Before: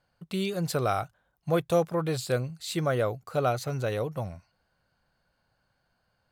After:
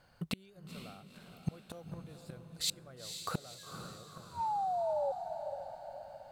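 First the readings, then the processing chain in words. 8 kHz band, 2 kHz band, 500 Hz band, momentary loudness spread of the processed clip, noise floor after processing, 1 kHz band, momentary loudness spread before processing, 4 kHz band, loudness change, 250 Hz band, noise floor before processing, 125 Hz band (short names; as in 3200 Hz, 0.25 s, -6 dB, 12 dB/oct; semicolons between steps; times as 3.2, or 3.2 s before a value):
-3.0 dB, -14.0 dB, -11.5 dB, 17 LU, -60 dBFS, -3.5 dB, 9 LU, -2.5 dB, -10.0 dB, -13.0 dB, -75 dBFS, -14.0 dB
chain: painted sound fall, 3.58–5.12, 540–1700 Hz -38 dBFS; flipped gate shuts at -25 dBFS, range -35 dB; in parallel at -0.5 dB: compressor, threshold -48 dBFS, peak gain reduction 15 dB; on the sum: diffused feedback echo 0.487 s, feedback 50%, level -7.5 dB; gain +2.5 dB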